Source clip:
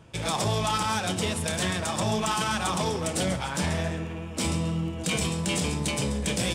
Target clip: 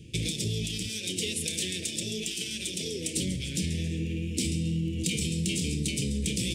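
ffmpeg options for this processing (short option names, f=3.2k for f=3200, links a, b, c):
-filter_complex "[0:a]asettb=1/sr,asplit=3[a][b][c];[a]atrim=end=0.894[d];[b]atrim=start=0.89:end=3.17,asetpts=PTS-STARTPTS,afade=t=in:d=0.004:c=qsin,afade=t=out:st=2.276:d=0.004:c=qsin,bass=f=250:g=-12,treble=f=4k:g=0[e];[c]atrim=start=3.166[f];[d][e]acrossfade=d=0.004:c1=hsin:c2=qsin[g];[g][f]acrossfade=d=0.004:c1=qsin:c2=hsin,acompressor=threshold=-31dB:ratio=6,asuperstop=centerf=1000:order=8:qfactor=0.51,volume=5.5dB"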